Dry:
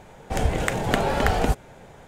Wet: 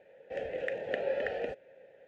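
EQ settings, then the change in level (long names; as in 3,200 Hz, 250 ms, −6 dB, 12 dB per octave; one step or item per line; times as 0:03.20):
formant filter e
high-frequency loss of the air 79 metres
0.0 dB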